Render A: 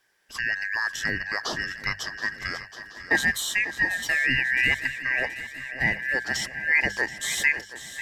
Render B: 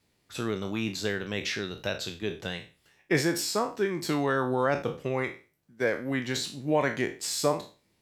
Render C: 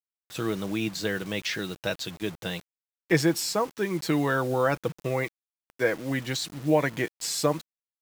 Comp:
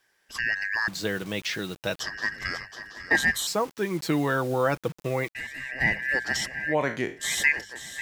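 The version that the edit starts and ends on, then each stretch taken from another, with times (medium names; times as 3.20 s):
A
0.88–2.00 s: from C
3.47–5.35 s: from C
6.70–7.21 s: from B, crossfade 0.10 s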